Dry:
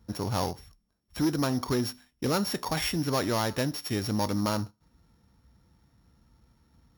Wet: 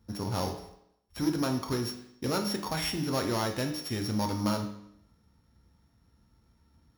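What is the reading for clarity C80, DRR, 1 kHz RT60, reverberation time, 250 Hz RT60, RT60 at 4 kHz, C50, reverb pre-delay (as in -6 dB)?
11.5 dB, 4.0 dB, 0.75 s, 0.75 s, 0.80 s, 0.70 s, 8.5 dB, 5 ms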